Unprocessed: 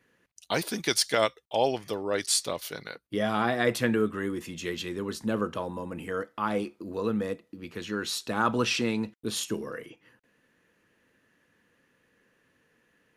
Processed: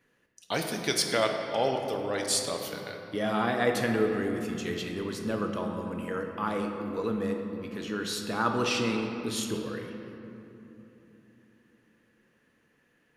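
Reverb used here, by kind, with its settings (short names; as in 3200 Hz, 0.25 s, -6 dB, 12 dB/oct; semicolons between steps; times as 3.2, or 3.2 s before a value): shoebox room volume 160 m³, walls hard, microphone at 0.32 m; gain -2.5 dB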